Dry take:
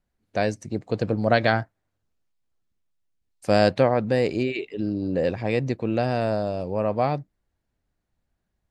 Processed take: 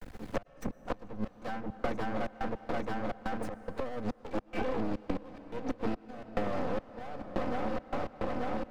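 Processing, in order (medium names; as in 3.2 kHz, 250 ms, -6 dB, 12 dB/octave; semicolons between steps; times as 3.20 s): comb filter that takes the minimum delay 3.9 ms; shuffle delay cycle 887 ms, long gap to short 1.5:1, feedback 63%, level -14.5 dB; inverted gate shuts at -14 dBFS, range -28 dB; trance gate "xxx.x.xxx.xx." 106 bpm -60 dB; compression 2.5:1, threshold -30 dBFS, peak gain reduction 7 dB; half-wave rectifier; treble shelf 2.9 kHz -11 dB; reverberation RT60 3.2 s, pre-delay 88 ms, DRR 19.5 dB; three bands compressed up and down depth 100%; trim +7.5 dB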